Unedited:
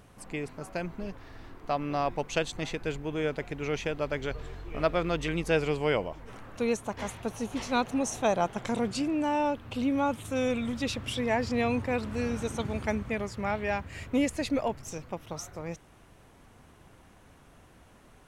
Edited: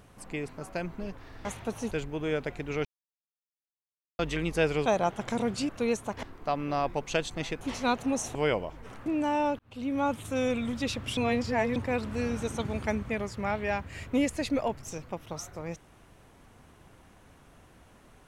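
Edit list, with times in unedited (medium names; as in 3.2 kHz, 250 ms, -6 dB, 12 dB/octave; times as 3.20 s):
1.45–2.83 s: swap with 7.03–7.49 s
3.77–5.11 s: mute
5.78–6.49 s: swap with 8.23–9.06 s
9.59–10.06 s: fade in
11.17–11.76 s: reverse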